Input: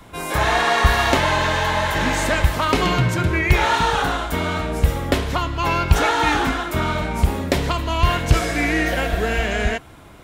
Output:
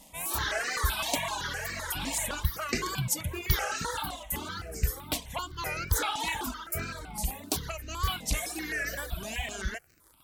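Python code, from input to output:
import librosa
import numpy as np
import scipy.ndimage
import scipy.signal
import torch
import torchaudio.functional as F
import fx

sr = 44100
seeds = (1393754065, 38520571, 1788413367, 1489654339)

y = librosa.effects.preemphasis(x, coef=0.8, zi=[0.0])
y = fx.dereverb_blind(y, sr, rt60_s=1.5)
y = fx.high_shelf(y, sr, hz=8000.0, db=9.0, at=(2.88, 3.65))
y = fx.dmg_crackle(y, sr, seeds[0], per_s=79.0, level_db=-43.0)
y = fx.wow_flutter(y, sr, seeds[1], rate_hz=2.1, depth_cents=150.0)
y = fx.phaser_held(y, sr, hz=7.8, low_hz=390.0, high_hz=3400.0)
y = y * 10.0 ** (3.0 / 20.0)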